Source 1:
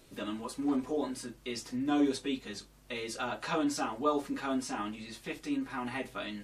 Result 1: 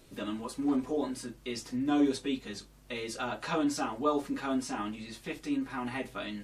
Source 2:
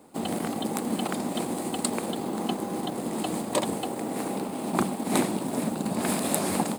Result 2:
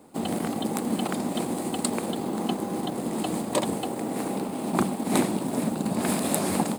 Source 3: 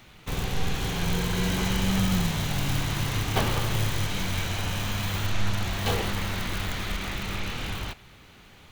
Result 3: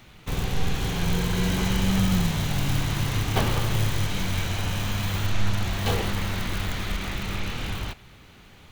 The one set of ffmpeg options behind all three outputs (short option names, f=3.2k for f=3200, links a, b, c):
-af "lowshelf=f=320:g=3"